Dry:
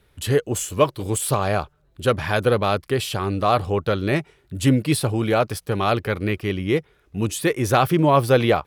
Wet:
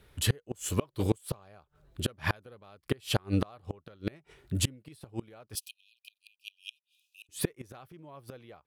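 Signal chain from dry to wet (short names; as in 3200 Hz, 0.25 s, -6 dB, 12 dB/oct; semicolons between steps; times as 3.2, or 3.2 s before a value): flipped gate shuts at -14 dBFS, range -33 dB; 5.55–7.29 brick-wall FIR high-pass 2400 Hz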